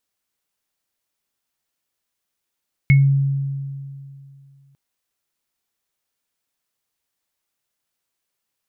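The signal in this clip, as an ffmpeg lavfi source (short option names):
-f lavfi -i "aevalsrc='0.398*pow(10,-3*t/2.52)*sin(2*PI*138*t)+0.188*pow(10,-3*t/0.21)*sin(2*PI*2190*t)':d=1.85:s=44100"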